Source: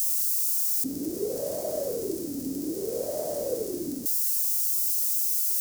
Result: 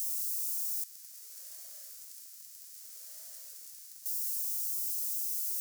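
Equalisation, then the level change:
high-pass filter 1,500 Hz 24 dB per octave
−8.5 dB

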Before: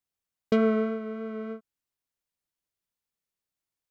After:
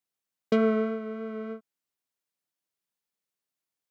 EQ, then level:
high-pass filter 150 Hz
0.0 dB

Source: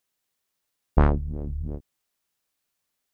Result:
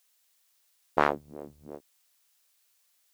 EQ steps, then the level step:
high-pass filter 480 Hz 12 dB per octave
high-shelf EQ 2,200 Hz +8.5 dB
+2.5 dB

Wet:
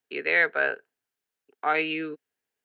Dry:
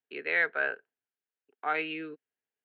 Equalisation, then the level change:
dynamic equaliser 1,500 Hz, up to −3 dB, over −37 dBFS, Q 1.4
+7.0 dB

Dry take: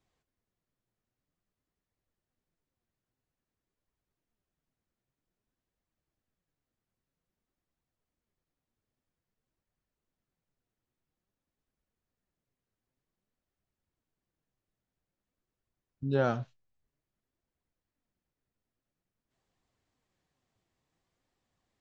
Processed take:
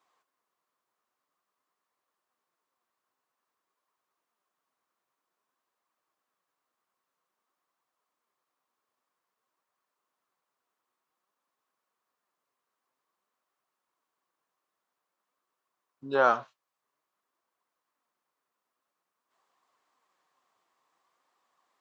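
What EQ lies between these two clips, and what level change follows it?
high-pass filter 440 Hz 12 dB per octave
parametric band 1,100 Hz +13 dB 0.71 octaves
+4.0 dB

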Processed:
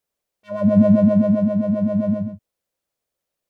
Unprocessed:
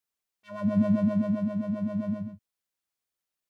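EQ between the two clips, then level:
low-shelf EQ 430 Hz +7 dB
parametric band 550 Hz +10 dB 0.72 octaves
+3.5 dB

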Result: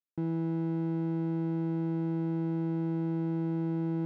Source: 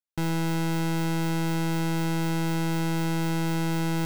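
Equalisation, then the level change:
resonant band-pass 270 Hz, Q 1.4
high-frequency loss of the air 73 metres
0.0 dB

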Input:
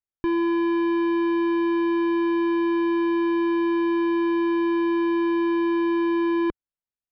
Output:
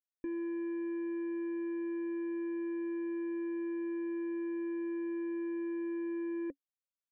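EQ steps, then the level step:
formant resonators in series e
parametric band 280 Hz +15 dB 0.37 octaves
−4.0 dB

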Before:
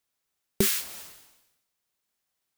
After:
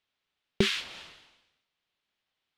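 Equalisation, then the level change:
low-pass with resonance 3,300 Hz, resonance Q 1.9
0.0 dB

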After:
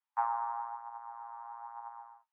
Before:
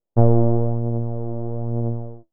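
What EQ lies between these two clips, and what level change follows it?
Butterworth high-pass 840 Hz 96 dB per octave
high-frequency loss of the air 390 metres
+8.5 dB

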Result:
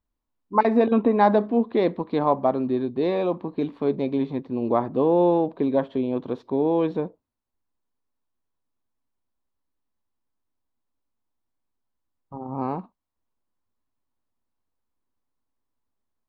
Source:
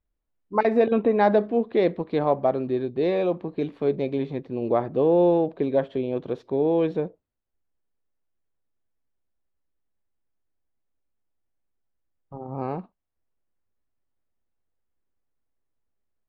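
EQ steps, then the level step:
graphic EQ with 15 bands 100 Hz +3 dB, 250 Hz +8 dB, 1,000 Hz +10 dB, 4,000 Hz +4 dB
−3.0 dB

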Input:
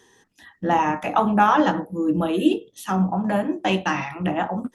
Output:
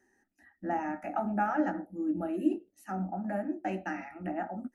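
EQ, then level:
high-shelf EQ 2,300 Hz −9 dB
phaser with its sweep stopped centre 690 Hz, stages 8
notch filter 1,100 Hz, Q 10
−8.5 dB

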